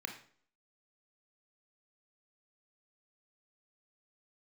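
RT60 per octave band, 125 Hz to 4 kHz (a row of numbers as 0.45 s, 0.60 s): 0.50 s, 0.55 s, 0.55 s, 0.50 s, 0.45 s, 0.45 s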